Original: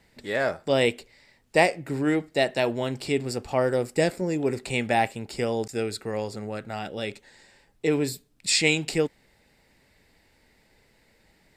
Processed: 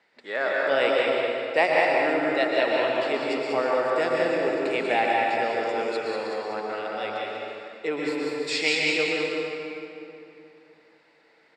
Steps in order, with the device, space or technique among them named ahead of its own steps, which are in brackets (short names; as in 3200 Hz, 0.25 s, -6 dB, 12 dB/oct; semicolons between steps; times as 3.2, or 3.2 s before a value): station announcement (BPF 420–4000 Hz; bell 1300 Hz +5 dB 0.59 oct; loudspeakers at several distances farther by 50 m -10 dB, 66 m -5 dB; reverb RT60 2.9 s, pre-delay 0.106 s, DRR -2 dB); gain -2 dB